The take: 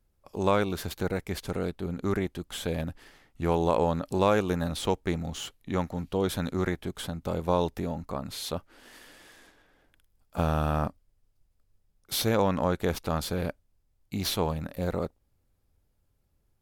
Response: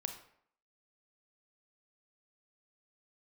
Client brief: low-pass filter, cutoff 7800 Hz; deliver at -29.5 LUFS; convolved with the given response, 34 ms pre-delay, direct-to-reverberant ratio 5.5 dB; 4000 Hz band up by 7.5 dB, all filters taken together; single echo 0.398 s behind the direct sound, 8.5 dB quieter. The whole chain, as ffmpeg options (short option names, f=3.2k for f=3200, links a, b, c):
-filter_complex "[0:a]lowpass=7.8k,equalizer=f=4k:t=o:g=9,aecho=1:1:398:0.376,asplit=2[a][b];[1:a]atrim=start_sample=2205,adelay=34[c];[b][c]afir=irnorm=-1:irlink=0,volume=-5dB[d];[a][d]amix=inputs=2:normalize=0,volume=-2dB"